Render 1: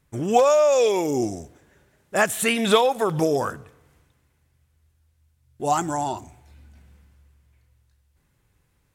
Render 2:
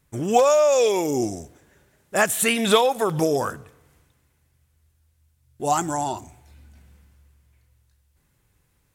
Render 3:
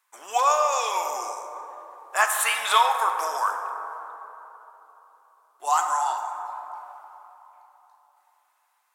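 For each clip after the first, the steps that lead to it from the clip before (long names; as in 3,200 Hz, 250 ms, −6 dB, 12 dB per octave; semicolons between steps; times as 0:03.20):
high-shelf EQ 6,200 Hz +5.5 dB
four-pole ladder high-pass 880 Hz, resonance 55%; dense smooth reverb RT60 3.6 s, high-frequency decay 0.3×, DRR 4 dB; level +7 dB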